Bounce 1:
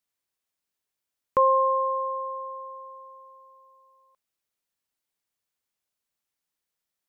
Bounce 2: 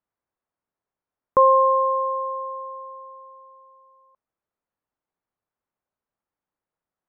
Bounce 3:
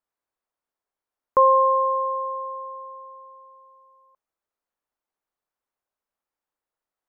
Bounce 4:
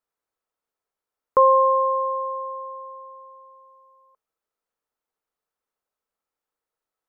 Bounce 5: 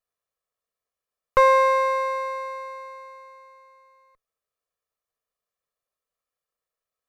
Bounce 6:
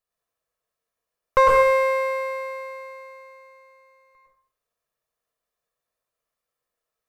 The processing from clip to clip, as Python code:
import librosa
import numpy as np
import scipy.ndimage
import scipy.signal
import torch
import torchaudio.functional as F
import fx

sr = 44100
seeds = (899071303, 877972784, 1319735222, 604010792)

y1 = scipy.signal.sosfilt(scipy.signal.cheby1(2, 1.0, 1100.0, 'lowpass', fs=sr, output='sos'), x)
y1 = y1 * librosa.db_to_amplitude(5.5)
y2 = fx.peak_eq(y1, sr, hz=130.0, db=-10.0, octaves=2.1)
y3 = fx.small_body(y2, sr, hz=(460.0, 1300.0), ring_ms=45, db=7)
y4 = fx.lower_of_two(y3, sr, delay_ms=1.7)
y5 = fx.rev_plate(y4, sr, seeds[0], rt60_s=0.59, hf_ratio=0.5, predelay_ms=95, drr_db=-3.0)